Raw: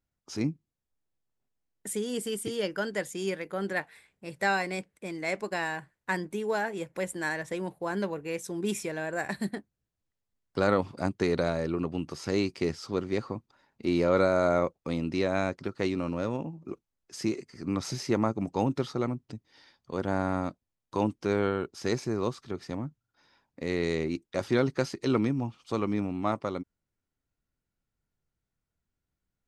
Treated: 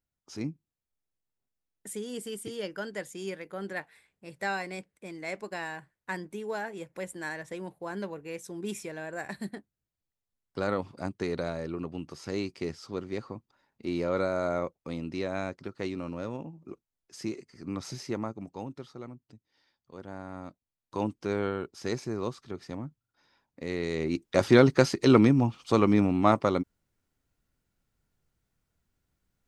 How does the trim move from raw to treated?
18.00 s -5 dB
18.74 s -13 dB
20.27 s -13 dB
21.01 s -3 dB
23.91 s -3 dB
24.31 s +7 dB

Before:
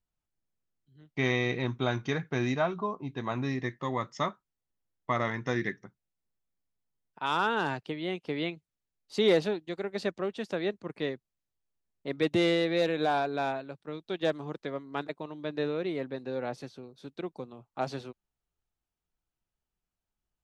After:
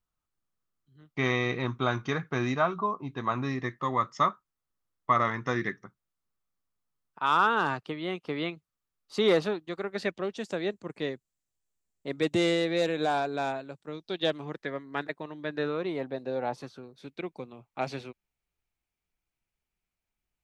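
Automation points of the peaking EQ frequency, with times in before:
peaking EQ +10 dB 0.46 oct
9.91 s 1.2 kHz
10.42 s 7.5 kHz
13.89 s 7.5 kHz
14.54 s 1.8 kHz
15.46 s 1.8 kHz
16.25 s 570 Hz
17.06 s 2.3 kHz

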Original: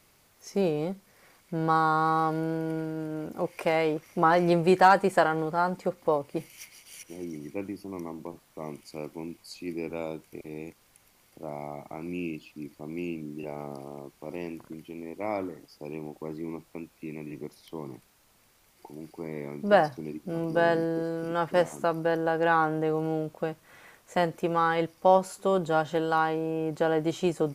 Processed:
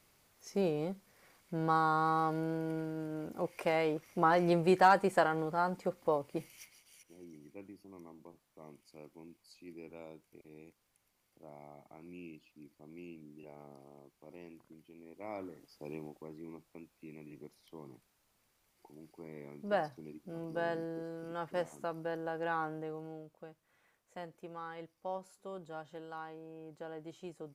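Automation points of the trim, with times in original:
6.49 s -6 dB
7.02 s -15.5 dB
14.98 s -15.5 dB
15.92 s -5.5 dB
16.30 s -12 dB
22.66 s -12 dB
23.31 s -20 dB

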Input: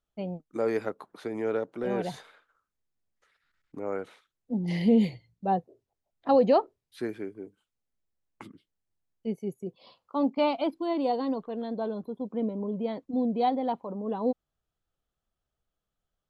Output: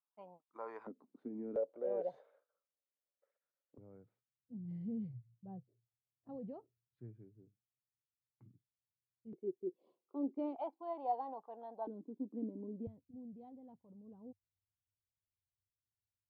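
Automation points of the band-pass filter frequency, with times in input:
band-pass filter, Q 6.8
1 kHz
from 0.87 s 250 Hz
from 1.56 s 550 Hz
from 3.78 s 120 Hz
from 9.33 s 360 Hz
from 10.56 s 820 Hz
from 11.87 s 290 Hz
from 12.87 s 100 Hz

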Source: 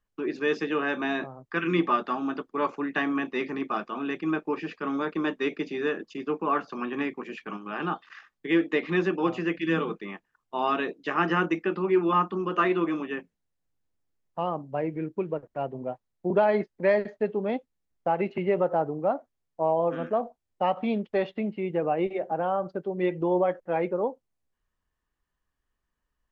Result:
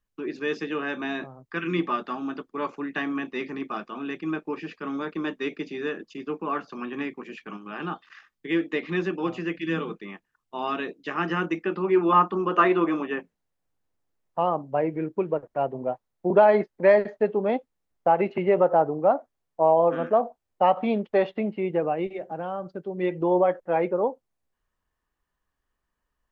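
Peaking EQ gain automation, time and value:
peaking EQ 790 Hz 2.5 oct
11.38 s -3.5 dB
12.19 s +6 dB
21.69 s +6 dB
22.11 s -5.5 dB
22.74 s -5.5 dB
23.27 s +4 dB

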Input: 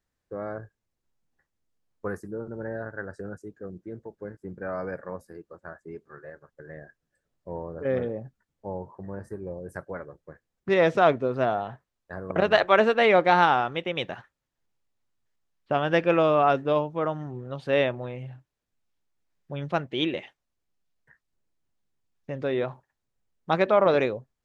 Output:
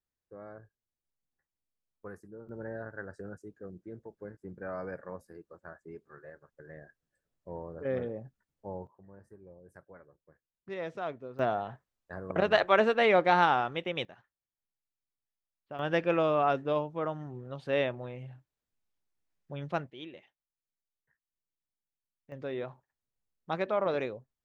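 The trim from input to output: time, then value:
-13 dB
from 2.49 s -6 dB
from 8.87 s -17 dB
from 11.39 s -4.5 dB
from 14.05 s -17 dB
from 15.79 s -6 dB
from 19.90 s -18.5 dB
from 22.32 s -9.5 dB

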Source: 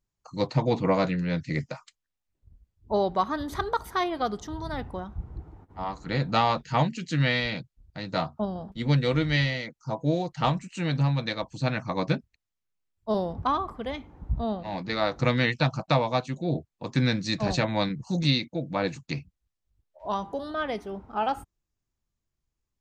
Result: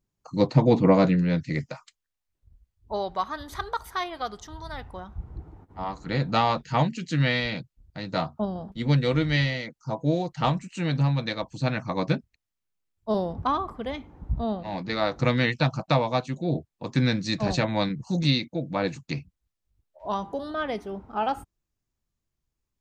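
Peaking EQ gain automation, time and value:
peaking EQ 240 Hz 2.5 oct
1.10 s +8 dB
1.68 s -1 dB
3.28 s -10.5 dB
4.81 s -10.5 dB
5.42 s +1.5 dB

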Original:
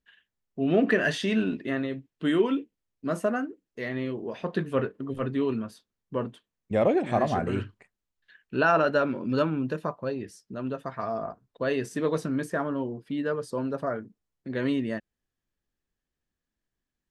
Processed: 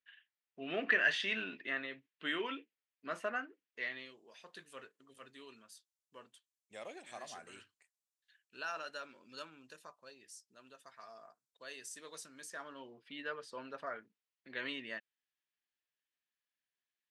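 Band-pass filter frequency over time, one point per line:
band-pass filter, Q 1.2
3.80 s 2.3 kHz
4.20 s 8 kHz
12.35 s 8 kHz
12.99 s 2.7 kHz

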